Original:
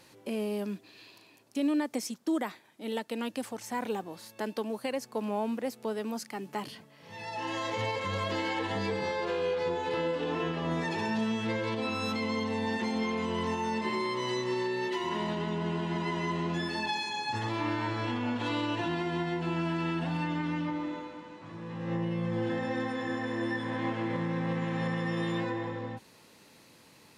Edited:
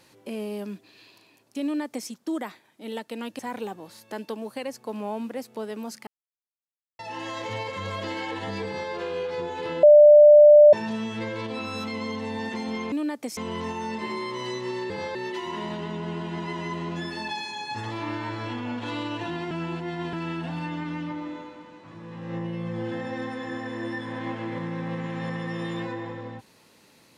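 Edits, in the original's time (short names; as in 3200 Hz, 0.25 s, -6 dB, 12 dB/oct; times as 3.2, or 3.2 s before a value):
1.63–2.08 copy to 13.2
3.39–3.67 cut
6.35–7.27 mute
8.94–9.19 copy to 14.73
10.11–11.01 bleep 594 Hz -8 dBFS
19.09–19.71 reverse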